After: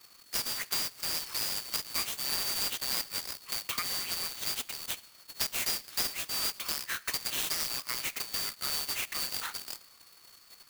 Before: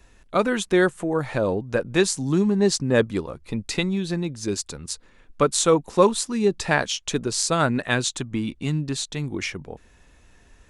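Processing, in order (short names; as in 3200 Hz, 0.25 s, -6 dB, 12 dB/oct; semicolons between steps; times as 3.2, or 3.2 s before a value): four-band scrambler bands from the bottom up 2341; compressor 4:1, threshold -27 dBFS, peak gain reduction 14 dB; elliptic band-pass 1200–8900 Hz; bell 4200 Hz -4 dB 0.77 oct; reverb, pre-delay 3 ms, DRR 16.5 dB; clock jitter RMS 0.036 ms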